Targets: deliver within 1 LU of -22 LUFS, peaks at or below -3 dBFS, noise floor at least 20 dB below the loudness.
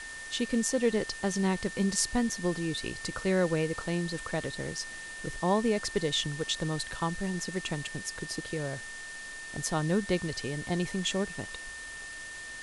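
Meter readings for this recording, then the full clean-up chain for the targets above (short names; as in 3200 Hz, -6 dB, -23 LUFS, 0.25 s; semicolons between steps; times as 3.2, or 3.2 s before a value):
steady tone 1800 Hz; tone level -41 dBFS; noise floor -43 dBFS; noise floor target -52 dBFS; loudness -31.5 LUFS; peak -11.5 dBFS; loudness target -22.0 LUFS
-> notch 1800 Hz, Q 30; denoiser 9 dB, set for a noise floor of -43 dBFS; gain +9.5 dB; limiter -3 dBFS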